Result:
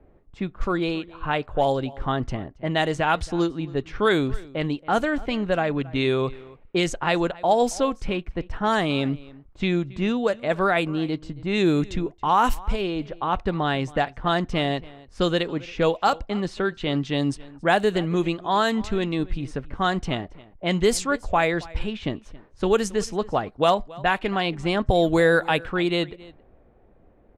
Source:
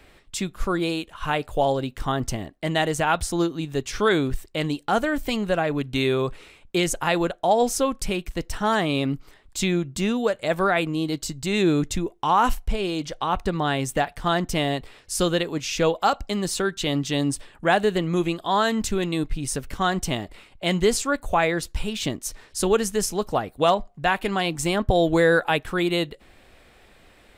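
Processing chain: level-controlled noise filter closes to 600 Hz, open at -15.5 dBFS; echo from a far wall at 47 m, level -21 dB

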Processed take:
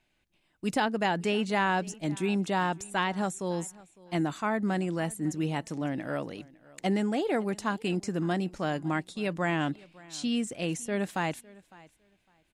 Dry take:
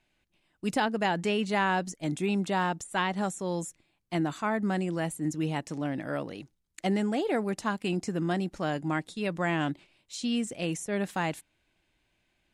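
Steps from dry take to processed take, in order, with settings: feedback delay 556 ms, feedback 18%, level -22.5 dB

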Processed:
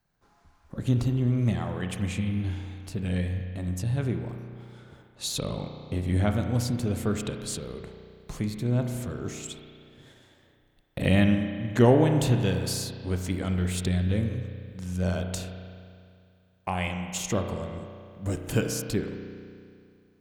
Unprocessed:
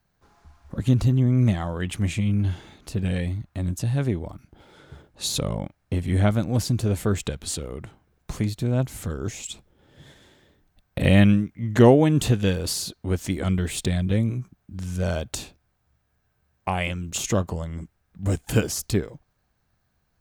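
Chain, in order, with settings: peaking EQ 71 Hz -7 dB 0.58 oct; spring tank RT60 2.3 s, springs 33 ms, chirp 50 ms, DRR 5 dB; trim -4.5 dB

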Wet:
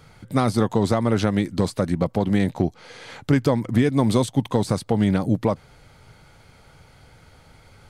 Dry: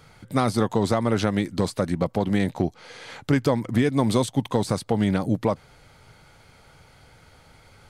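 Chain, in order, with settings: bass shelf 350 Hz +3.5 dB

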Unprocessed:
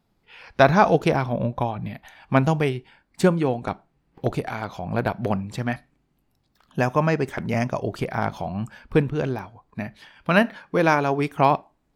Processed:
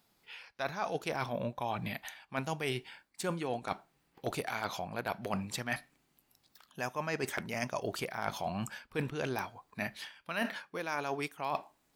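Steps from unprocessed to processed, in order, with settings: tilt EQ +3 dB/octave; reverse; compression 20:1, threshold -31 dBFS, peak gain reduction 22 dB; reverse

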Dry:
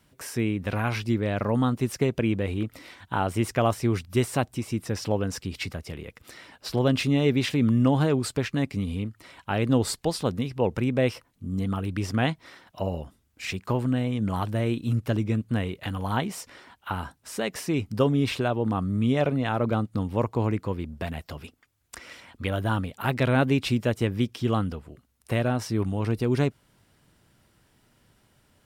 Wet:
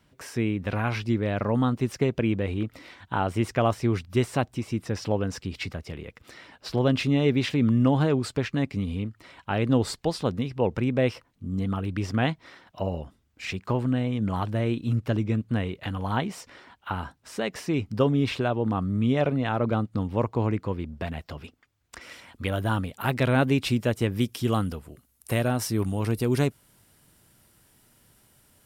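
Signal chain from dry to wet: peaking EQ 12 kHz -9.5 dB 1.2 oct, from 22.01 s +3 dB, from 24.16 s +13 dB

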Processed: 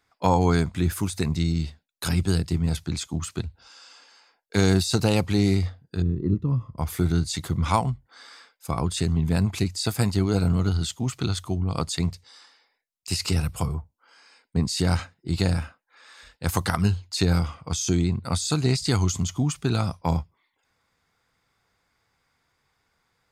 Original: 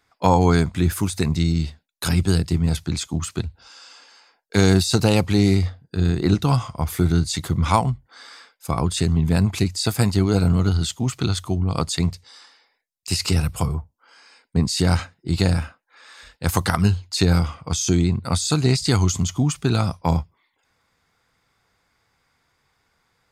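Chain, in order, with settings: 6.02–6.78 s: boxcar filter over 58 samples; trim -4 dB

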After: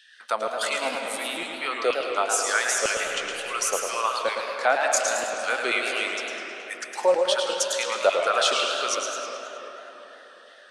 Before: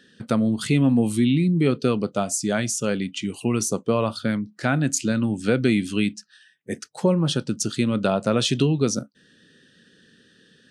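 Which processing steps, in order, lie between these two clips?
high-pass 390 Hz 12 dB/octave; LFO high-pass saw down 2.1 Hz 530–2600 Hz; algorithmic reverb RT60 4.4 s, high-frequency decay 0.5×, pre-delay 85 ms, DRR 3.5 dB; modulated delay 106 ms, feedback 54%, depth 192 cents, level -6 dB

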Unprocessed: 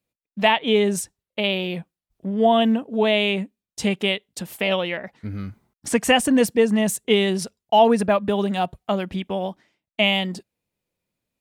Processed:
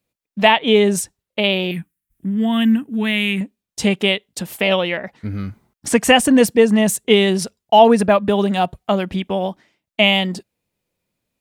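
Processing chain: 1.71–3.41 s: FFT filter 300 Hz 0 dB, 540 Hz -22 dB, 1.8 kHz +2 dB, 3.3 kHz -5 dB, 4.7 kHz -8 dB, 11 kHz +9 dB; trim +5 dB

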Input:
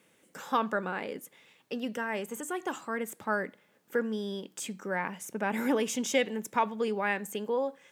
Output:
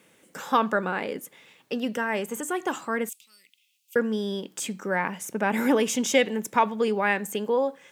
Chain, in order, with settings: 3.09–3.96 s: elliptic high-pass 2.6 kHz, stop band 40 dB; trim +6 dB

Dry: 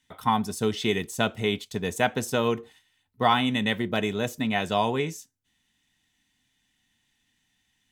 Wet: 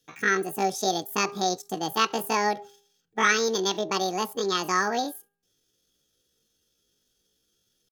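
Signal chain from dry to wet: pitch shift +10 st; de-hum 404.2 Hz, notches 4

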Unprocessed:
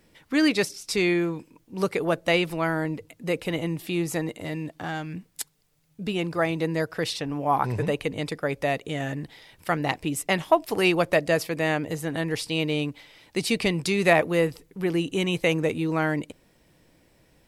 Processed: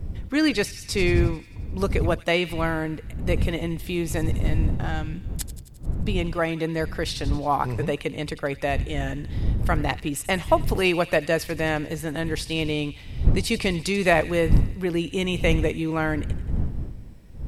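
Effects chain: wind noise 87 Hz -27 dBFS; feedback echo behind a high-pass 88 ms, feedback 65%, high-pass 2.3 kHz, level -13.5 dB

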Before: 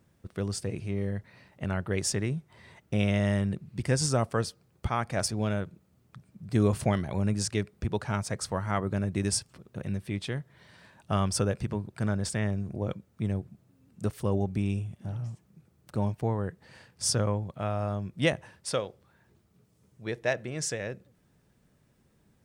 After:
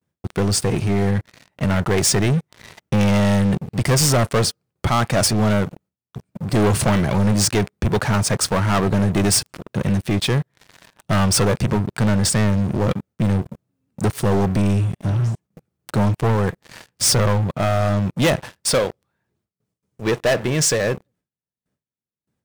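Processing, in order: gate with hold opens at -55 dBFS; high-pass 78 Hz 6 dB/octave; waveshaping leveller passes 5

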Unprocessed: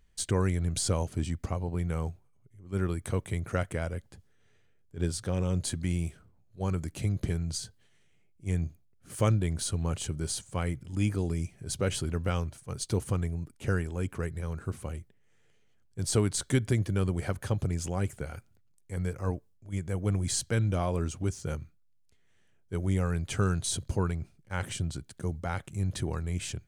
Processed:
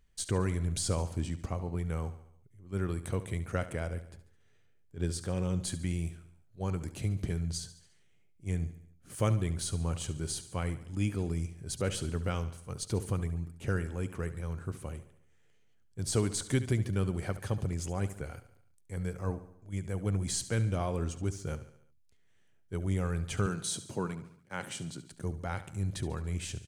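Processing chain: 23.46–25.12 s: high-pass 140 Hz 24 dB/octave; on a send: feedback delay 71 ms, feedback 53%, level -14 dB; on the sum: trim -3 dB

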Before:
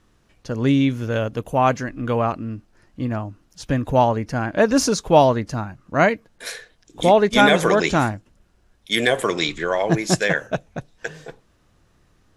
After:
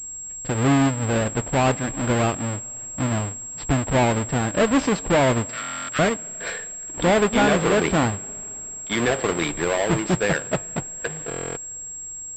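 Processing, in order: square wave that keeps the level; 5.47–5.99 s: steep high-pass 1.2 kHz 72 dB/octave; in parallel at +2 dB: compression, threshold -24 dBFS, peak gain reduction 17 dB; on the sum: one-sided clip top -9 dBFS, bottom -5.5 dBFS; flange 0.33 Hz, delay 0.8 ms, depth 4.3 ms, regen -86%; on a send at -22.5 dB: reverberation RT60 3.9 s, pre-delay 4 ms; on the sum: buffer glitch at 5.61/11.29 s, samples 1024, times 11; class-D stage that switches slowly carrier 7.6 kHz; trim -3 dB

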